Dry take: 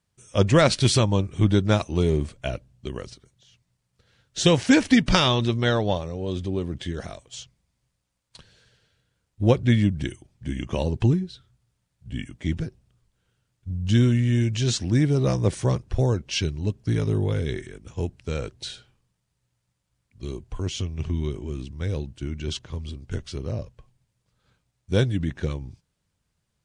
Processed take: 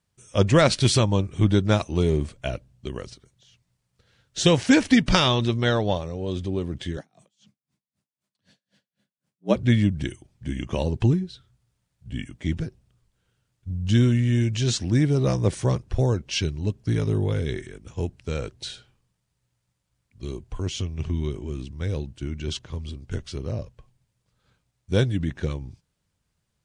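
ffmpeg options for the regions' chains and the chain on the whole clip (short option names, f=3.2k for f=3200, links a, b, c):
-filter_complex "[0:a]asettb=1/sr,asplit=3[a][b][c];[a]atrim=end=6.974[d];[b]atrim=start=6.97:end=9.56,asetpts=PTS-STARTPTS,afade=t=in:d=0.004:c=qsin,afade=t=out:st=2.586:d=0.004:c=qsin,afreqshift=78,aeval=exprs='val(0)*pow(10,-37*(0.5-0.5*cos(2*PI*3.9*n/s))/20)':c=same[e];[c]atrim=start=9.556[f];[d][e]acrossfade=d=0.004:c1=hsin:c2=qsin[g];[g][f]acrossfade=d=0.004:c1=qsin:c2=hsin"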